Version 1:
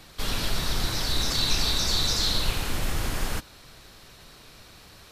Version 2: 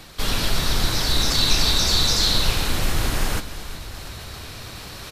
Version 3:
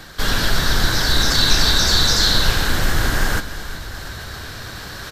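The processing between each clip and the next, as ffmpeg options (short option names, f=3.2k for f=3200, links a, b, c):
-filter_complex "[0:a]asplit=6[a][b][c][d][e][f];[b]adelay=350,afreqshift=-30,volume=-13.5dB[g];[c]adelay=700,afreqshift=-60,volume=-19.2dB[h];[d]adelay=1050,afreqshift=-90,volume=-24.9dB[i];[e]adelay=1400,afreqshift=-120,volume=-30.5dB[j];[f]adelay=1750,afreqshift=-150,volume=-36.2dB[k];[a][g][h][i][j][k]amix=inputs=6:normalize=0,areverse,acompressor=mode=upward:threshold=-33dB:ratio=2.5,areverse,volume=5.5dB"
-af "equalizer=f=1.6k:t=o:w=0.33:g=10,equalizer=f=2.5k:t=o:w=0.33:g=-6,equalizer=f=10k:t=o:w=0.33:g=-6,volume=3.5dB"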